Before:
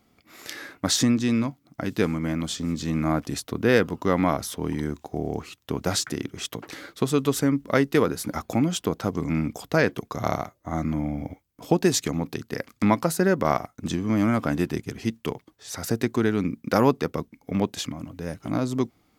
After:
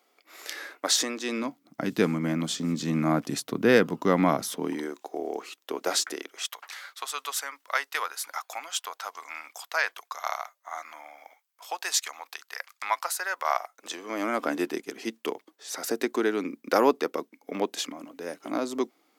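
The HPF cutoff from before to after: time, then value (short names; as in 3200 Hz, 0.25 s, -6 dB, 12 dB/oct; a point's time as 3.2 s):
HPF 24 dB/oct
1.2 s 390 Hz
1.85 s 150 Hz
4.47 s 150 Hz
4.9 s 350 Hz
6.12 s 350 Hz
6.55 s 850 Hz
13.38 s 850 Hz
14.44 s 300 Hz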